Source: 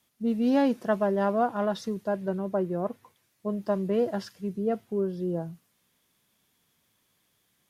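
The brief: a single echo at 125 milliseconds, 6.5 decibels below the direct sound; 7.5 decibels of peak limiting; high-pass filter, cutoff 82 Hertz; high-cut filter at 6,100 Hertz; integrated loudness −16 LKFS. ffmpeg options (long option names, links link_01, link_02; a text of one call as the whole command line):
ffmpeg -i in.wav -af "highpass=82,lowpass=6100,alimiter=limit=-21dB:level=0:latency=1,aecho=1:1:125:0.473,volume=14.5dB" out.wav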